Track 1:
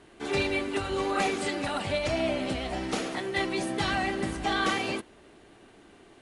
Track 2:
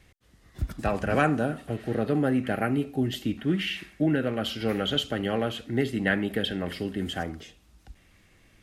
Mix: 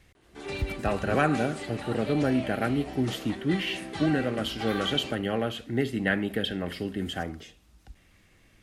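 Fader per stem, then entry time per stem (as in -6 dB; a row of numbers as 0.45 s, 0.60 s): -8.0 dB, -1.0 dB; 0.15 s, 0.00 s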